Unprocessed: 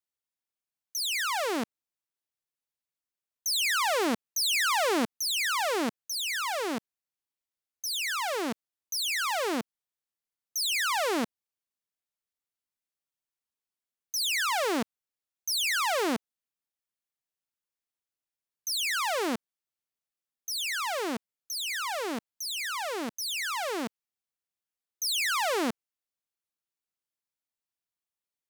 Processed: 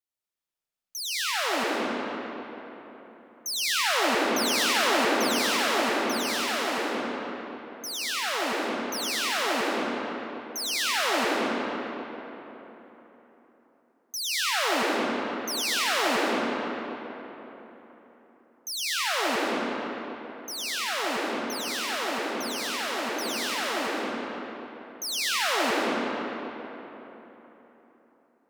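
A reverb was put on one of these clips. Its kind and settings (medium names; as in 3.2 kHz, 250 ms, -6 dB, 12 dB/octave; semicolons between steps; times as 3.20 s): algorithmic reverb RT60 3.8 s, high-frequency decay 0.6×, pre-delay 70 ms, DRR -6 dB; trim -3 dB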